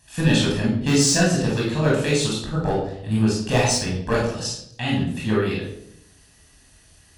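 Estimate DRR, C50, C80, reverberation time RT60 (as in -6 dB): -4.5 dB, 2.0 dB, 7.0 dB, 0.70 s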